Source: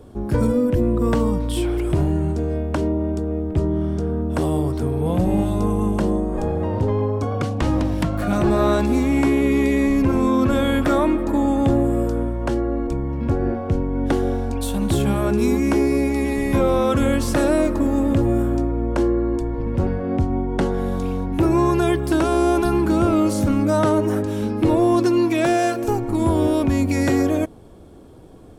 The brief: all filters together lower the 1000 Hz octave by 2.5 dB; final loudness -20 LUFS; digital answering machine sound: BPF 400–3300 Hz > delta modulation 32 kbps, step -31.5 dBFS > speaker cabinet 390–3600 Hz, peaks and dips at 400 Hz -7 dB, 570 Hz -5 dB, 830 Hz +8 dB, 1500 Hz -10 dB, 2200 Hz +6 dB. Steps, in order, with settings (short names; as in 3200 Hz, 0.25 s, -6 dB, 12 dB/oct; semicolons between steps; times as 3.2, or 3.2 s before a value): BPF 400–3300 Hz; bell 1000 Hz -6.5 dB; delta modulation 32 kbps, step -31.5 dBFS; speaker cabinet 390–3600 Hz, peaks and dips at 400 Hz -7 dB, 570 Hz -5 dB, 830 Hz +8 dB, 1500 Hz -10 dB, 2200 Hz +6 dB; gain +10.5 dB